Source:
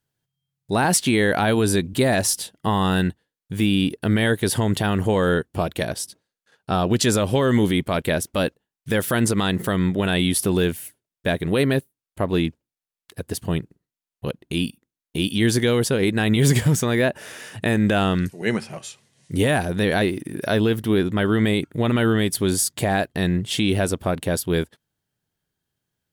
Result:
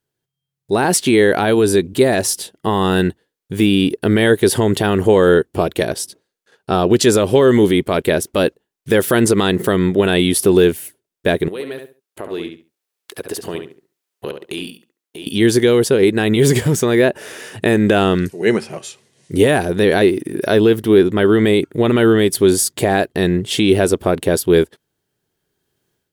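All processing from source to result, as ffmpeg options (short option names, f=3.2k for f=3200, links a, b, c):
-filter_complex "[0:a]asettb=1/sr,asplit=3[a][b][c];[a]atrim=end=11.484[d];[b]atrim=start=11.48:end=15.27,asetpts=PTS-STARTPTS,afade=t=in:d=0.004:c=qsin,afade=t=out:st=3.786:d=0.004:c=qsin,highpass=f=510:p=1,acompressor=threshold=-40dB:ratio=2.5:attack=3.2:release=140:knee=1:detection=peak,asplit=2[e][f];[f]adelay=69,lowpass=f=4.4k:p=1,volume=-6.5dB,asplit=2[g][h];[h]adelay=69,lowpass=f=4.4k:p=1,volume=0.21,asplit=2[i][j];[j]adelay=69,lowpass=f=4.4k:p=1,volume=0.21[k];[e][g][i][k]amix=inputs=4:normalize=0,atrim=end_sample=167139[l];[c]atrim=start=15.266[m];[d][l]acrossfade=d=0.004:c1=hsin:c2=qsin[n];[n][m]acrossfade=d=0.004:c1=qsin:c2=hsin,equalizer=f=390:t=o:w=0.69:g=9,dynaudnorm=f=540:g=3:m=11.5dB,lowshelf=f=220:g=-3.5"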